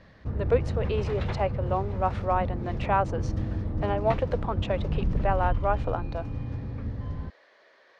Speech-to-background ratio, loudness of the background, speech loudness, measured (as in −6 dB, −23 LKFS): 2.0 dB, −32.0 LKFS, −30.0 LKFS